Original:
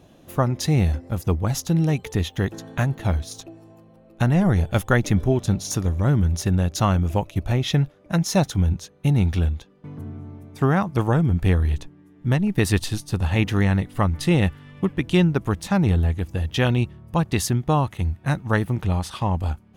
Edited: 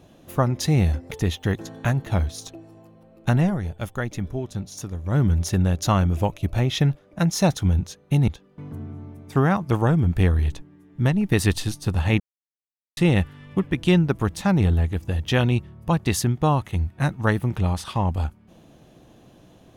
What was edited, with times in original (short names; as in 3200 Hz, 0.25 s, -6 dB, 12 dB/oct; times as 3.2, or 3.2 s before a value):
1.11–2.04 cut
4.33–6.13 dip -9 dB, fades 0.17 s
9.21–9.54 cut
13.46–14.23 mute